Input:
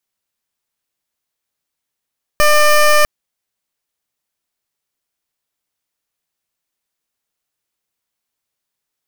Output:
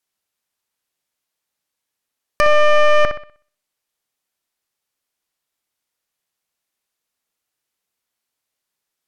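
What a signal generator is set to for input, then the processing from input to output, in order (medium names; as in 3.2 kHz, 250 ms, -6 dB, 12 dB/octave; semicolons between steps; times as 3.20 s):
pulse 599 Hz, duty 16% -9.5 dBFS 0.65 s
low-pass that closes with the level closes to 2.3 kHz, closed at -14 dBFS; bass shelf 180 Hz -4.5 dB; on a send: bucket-brigade echo 62 ms, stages 2048, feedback 36%, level -7.5 dB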